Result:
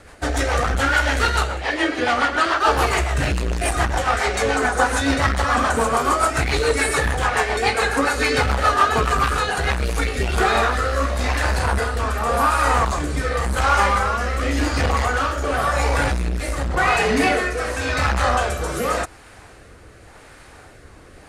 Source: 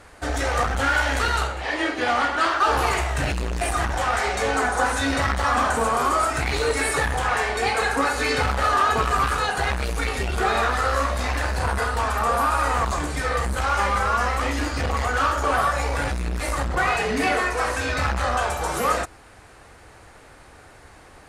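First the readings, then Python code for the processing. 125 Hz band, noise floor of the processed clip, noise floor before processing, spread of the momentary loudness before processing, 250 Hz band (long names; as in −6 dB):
+4.0 dB, −45 dBFS, −48 dBFS, 5 LU, +4.5 dB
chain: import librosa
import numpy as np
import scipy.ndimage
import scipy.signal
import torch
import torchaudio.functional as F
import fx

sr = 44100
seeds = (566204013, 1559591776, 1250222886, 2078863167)

y = fx.rotary_switch(x, sr, hz=7.0, then_hz=0.9, switch_at_s=9.4)
y = y * librosa.db_to_amplitude(5.5)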